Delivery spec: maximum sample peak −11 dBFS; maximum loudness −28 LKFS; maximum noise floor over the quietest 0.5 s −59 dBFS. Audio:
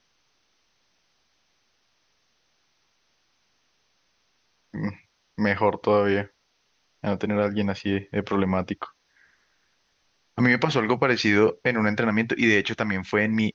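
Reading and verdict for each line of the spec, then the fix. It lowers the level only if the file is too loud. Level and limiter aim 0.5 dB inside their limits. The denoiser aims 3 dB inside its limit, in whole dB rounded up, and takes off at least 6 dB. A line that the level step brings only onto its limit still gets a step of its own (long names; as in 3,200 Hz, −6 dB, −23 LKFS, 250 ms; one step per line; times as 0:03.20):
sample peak −6.0 dBFS: out of spec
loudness −23.5 LKFS: out of spec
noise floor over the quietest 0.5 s −69 dBFS: in spec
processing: level −5 dB
brickwall limiter −11.5 dBFS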